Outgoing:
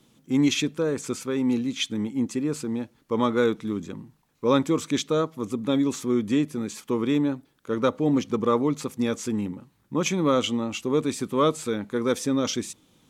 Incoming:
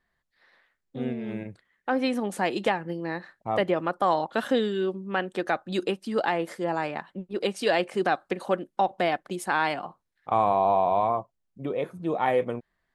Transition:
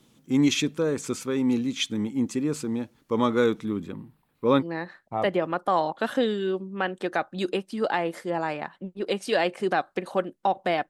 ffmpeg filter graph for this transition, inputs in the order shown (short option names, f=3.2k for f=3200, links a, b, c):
-filter_complex "[0:a]asettb=1/sr,asplit=3[a][b][c];[a]atrim=end=3.654[d];[b]atrim=start=3.65:end=4.66,asetpts=PTS-STARTPTS,afade=t=in:d=0.004:c=qsin,afade=t=out:st=1.006:d=0.004:c=qsin,equalizer=f=6.3k:w=1.8:g=-14.5[e];[c]atrim=start=4.656[f];[d][e]acrossfade=d=0.004:c1=hsin:c2=qsin[g];[g][f]acrossfade=d=0.004:c1=qsin:c2=hsin,apad=whole_dur=10.89,atrim=end=10.89,atrim=end=4.66,asetpts=PTS-STARTPTS[h];[1:a]atrim=start=2.92:end=9.23,asetpts=PTS-STARTPTS[i];[h][i]acrossfade=d=0.08:c1=tri:c2=tri"